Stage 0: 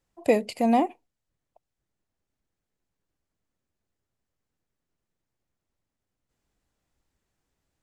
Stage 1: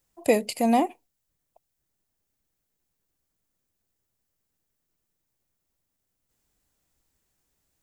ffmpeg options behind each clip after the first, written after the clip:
-af "aemphasis=mode=production:type=50kf"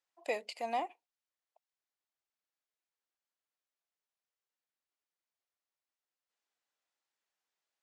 -af "highpass=700,lowpass=4700,volume=0.398"

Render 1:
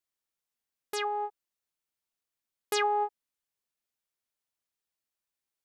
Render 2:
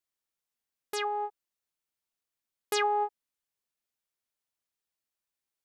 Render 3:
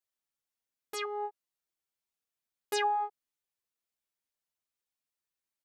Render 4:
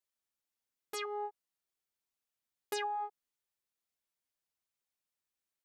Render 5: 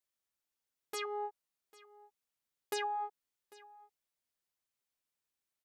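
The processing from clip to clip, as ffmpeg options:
-af anull
-filter_complex "[0:a]asplit=2[s0][s1];[s1]adelay=8,afreqshift=-1.4[s2];[s0][s2]amix=inputs=2:normalize=1"
-af "acompressor=threshold=0.0224:ratio=6,volume=0.891"
-af "aecho=1:1:797:0.0841"

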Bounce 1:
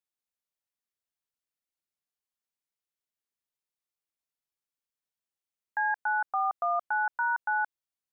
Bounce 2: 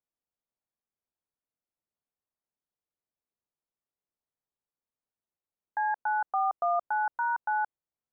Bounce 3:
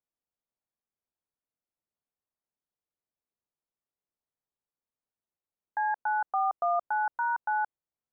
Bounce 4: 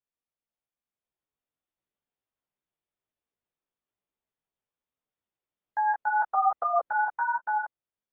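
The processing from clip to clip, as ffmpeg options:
-af "lowpass=1000,volume=1.5"
-af anull
-af "flanger=delay=15:depth=4.2:speed=1.2,dynaudnorm=f=240:g=9:m=1.78" -ar 32000 -c:a aac -b:a 16k

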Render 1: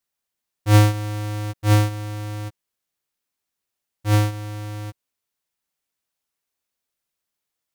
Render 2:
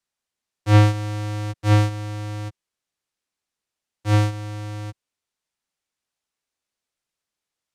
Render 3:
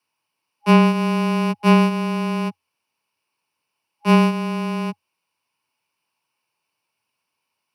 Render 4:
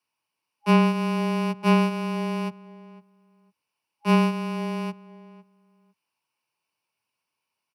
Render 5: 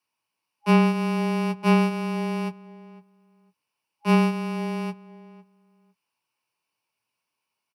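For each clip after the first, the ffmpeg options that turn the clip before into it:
-filter_complex "[0:a]lowpass=8900,acrossover=split=140|770|4000[s0][s1][s2][s3];[s3]alimiter=limit=0.0668:level=0:latency=1[s4];[s0][s1][s2][s4]amix=inputs=4:normalize=0"
-af "superequalizer=9b=2.82:11b=0.708:12b=2.24:13b=0.562:15b=0.282,afreqshift=86,acompressor=threshold=0.158:ratio=6,volume=2.11"
-filter_complex "[0:a]asplit=2[s0][s1];[s1]adelay=504,lowpass=f=1900:p=1,volume=0.126,asplit=2[s2][s3];[s3]adelay=504,lowpass=f=1900:p=1,volume=0.18[s4];[s0][s2][s4]amix=inputs=3:normalize=0,volume=0.562"
-filter_complex "[0:a]asplit=2[s0][s1];[s1]adelay=17,volume=0.282[s2];[s0][s2]amix=inputs=2:normalize=0"

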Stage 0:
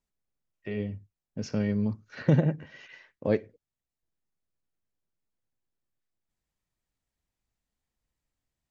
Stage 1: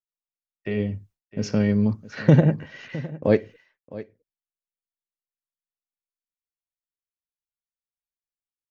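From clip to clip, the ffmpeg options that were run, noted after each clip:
-af "agate=range=0.0224:threshold=0.002:ratio=3:detection=peak,aecho=1:1:660:0.141,volume=2.24"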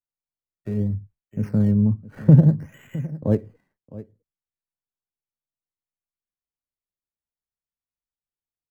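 -filter_complex "[0:a]bass=f=250:g=13,treble=f=4000:g=-8,acrossover=split=230|1700[s0][s1][s2];[s2]acrusher=samples=17:mix=1:aa=0.000001:lfo=1:lforange=17:lforate=0.61[s3];[s0][s1][s3]amix=inputs=3:normalize=0,volume=0.447"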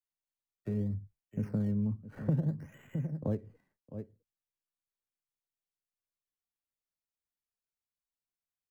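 -filter_complex "[0:a]acrossover=split=190|1400[s0][s1][s2];[s0]acompressor=threshold=0.0355:ratio=4[s3];[s1]acompressor=threshold=0.0316:ratio=4[s4];[s2]acompressor=threshold=0.00141:ratio=4[s5];[s3][s4][s5]amix=inputs=3:normalize=0,volume=0.562"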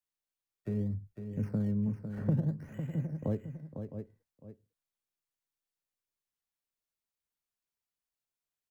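-af "aecho=1:1:503:0.376"

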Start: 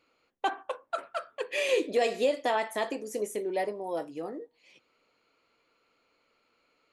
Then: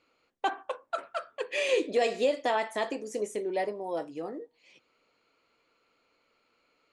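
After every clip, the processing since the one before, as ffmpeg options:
-af "lowpass=f=9200:w=0.5412,lowpass=f=9200:w=1.3066"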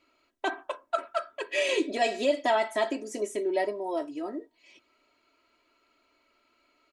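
-af "aecho=1:1:3.1:0.9"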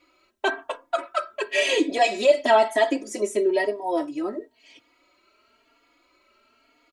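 -filter_complex "[0:a]asplit=2[s0][s1];[s1]adelay=3.6,afreqshift=1[s2];[s0][s2]amix=inputs=2:normalize=1,volume=2.82"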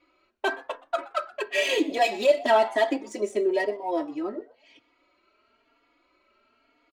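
-filter_complex "[0:a]adynamicsmooth=sensitivity=6:basefreq=4500,asplit=3[s0][s1][s2];[s1]adelay=122,afreqshift=130,volume=0.0708[s3];[s2]adelay=244,afreqshift=260,volume=0.0234[s4];[s0][s3][s4]amix=inputs=3:normalize=0,volume=0.75"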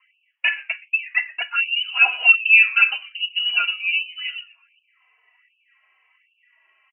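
-filter_complex "[0:a]acrossover=split=470 2000:gain=0.0891 1 0.2[s0][s1][s2];[s0][s1][s2]amix=inputs=3:normalize=0,lowpass=f=2800:t=q:w=0.5098,lowpass=f=2800:t=q:w=0.6013,lowpass=f=2800:t=q:w=0.9,lowpass=f=2800:t=q:w=2.563,afreqshift=-3300,afftfilt=real='re*gte(b*sr/1024,300*pow(2500/300,0.5+0.5*sin(2*PI*1.3*pts/sr)))':imag='im*gte(b*sr/1024,300*pow(2500/300,0.5+0.5*sin(2*PI*1.3*pts/sr)))':win_size=1024:overlap=0.75,volume=2.82"

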